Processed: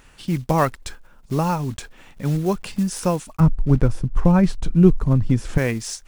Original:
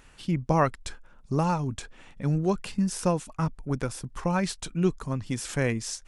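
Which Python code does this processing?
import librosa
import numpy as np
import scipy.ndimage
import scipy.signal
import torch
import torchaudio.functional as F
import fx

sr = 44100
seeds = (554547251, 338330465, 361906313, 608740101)

y = fx.block_float(x, sr, bits=5)
y = fx.tilt_eq(y, sr, slope=-3.5, at=(3.4, 5.58))
y = F.gain(torch.from_numpy(y), 4.0).numpy()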